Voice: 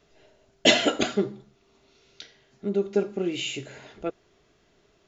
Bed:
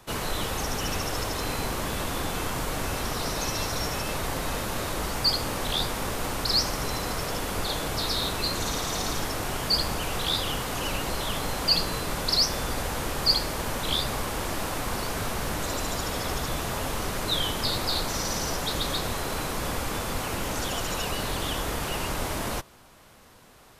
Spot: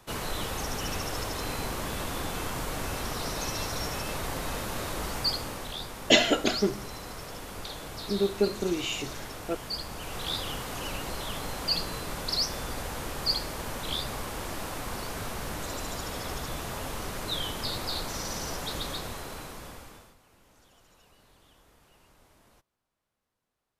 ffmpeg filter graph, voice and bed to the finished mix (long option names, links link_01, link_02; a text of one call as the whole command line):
ffmpeg -i stem1.wav -i stem2.wav -filter_complex "[0:a]adelay=5450,volume=-1.5dB[link_01];[1:a]volume=1.5dB,afade=type=out:start_time=5.15:duration=0.62:silence=0.446684,afade=type=in:start_time=9.89:duration=0.42:silence=0.562341,afade=type=out:start_time=18.77:duration=1.39:silence=0.0530884[link_02];[link_01][link_02]amix=inputs=2:normalize=0" out.wav